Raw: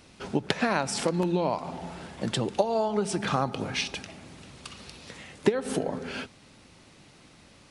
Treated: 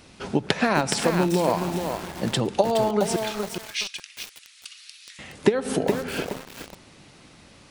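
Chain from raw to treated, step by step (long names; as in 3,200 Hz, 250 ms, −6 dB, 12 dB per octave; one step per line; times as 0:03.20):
0:03.16–0:05.19: Bessel high-pass filter 2,600 Hz, order 6
feedback echo at a low word length 419 ms, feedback 35%, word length 6 bits, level −5 dB
level +4 dB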